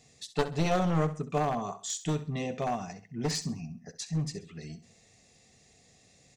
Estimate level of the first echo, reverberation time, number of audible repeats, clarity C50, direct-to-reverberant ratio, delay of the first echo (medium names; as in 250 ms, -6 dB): -14.0 dB, no reverb, 3, no reverb, no reverb, 66 ms